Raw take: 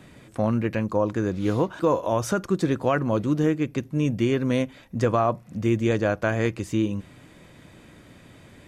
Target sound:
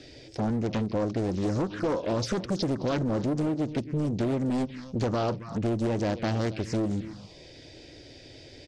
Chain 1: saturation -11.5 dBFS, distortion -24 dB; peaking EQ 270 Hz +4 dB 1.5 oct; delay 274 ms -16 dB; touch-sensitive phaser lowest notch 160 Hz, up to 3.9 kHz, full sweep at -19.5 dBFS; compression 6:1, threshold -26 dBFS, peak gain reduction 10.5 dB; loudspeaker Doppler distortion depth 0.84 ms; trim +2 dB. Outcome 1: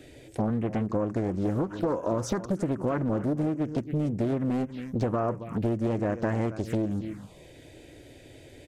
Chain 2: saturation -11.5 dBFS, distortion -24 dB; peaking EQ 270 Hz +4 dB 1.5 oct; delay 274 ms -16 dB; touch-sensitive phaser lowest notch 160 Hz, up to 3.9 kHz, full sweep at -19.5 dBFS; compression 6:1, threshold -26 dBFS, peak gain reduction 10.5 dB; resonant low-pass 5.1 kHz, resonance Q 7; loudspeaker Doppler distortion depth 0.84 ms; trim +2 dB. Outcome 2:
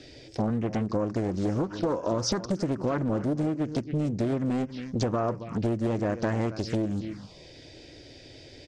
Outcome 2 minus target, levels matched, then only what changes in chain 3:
saturation: distortion -13 dB
change: saturation -21 dBFS, distortion -11 dB

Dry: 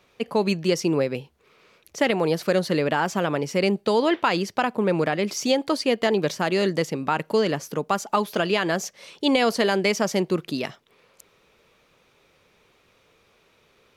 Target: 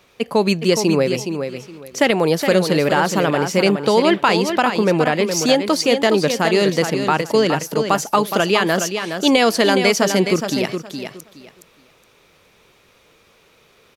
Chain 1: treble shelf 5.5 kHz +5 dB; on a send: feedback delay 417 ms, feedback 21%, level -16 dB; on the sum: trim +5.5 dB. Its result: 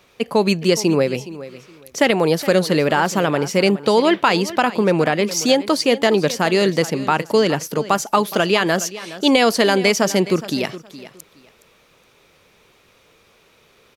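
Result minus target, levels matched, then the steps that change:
echo-to-direct -8.5 dB
change: feedback delay 417 ms, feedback 21%, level -7.5 dB

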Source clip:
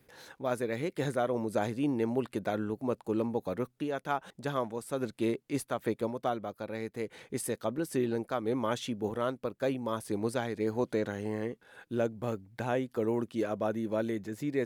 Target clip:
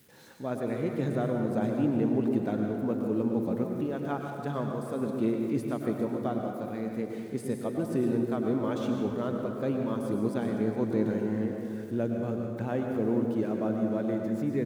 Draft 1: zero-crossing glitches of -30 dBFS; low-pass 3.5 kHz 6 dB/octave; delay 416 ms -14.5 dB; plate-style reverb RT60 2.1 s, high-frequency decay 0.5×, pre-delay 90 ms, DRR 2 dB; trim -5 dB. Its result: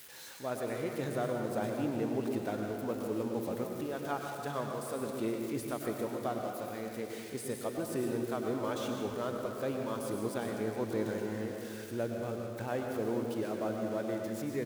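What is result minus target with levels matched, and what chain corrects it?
zero-crossing glitches: distortion +11 dB; 250 Hz band -2.5 dB
zero-crossing glitches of -41 dBFS; low-pass 3.5 kHz 6 dB/octave; peaking EQ 190 Hz +10.5 dB 1.9 oct; delay 416 ms -14.5 dB; plate-style reverb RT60 2.1 s, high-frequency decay 0.5×, pre-delay 90 ms, DRR 2 dB; trim -5 dB

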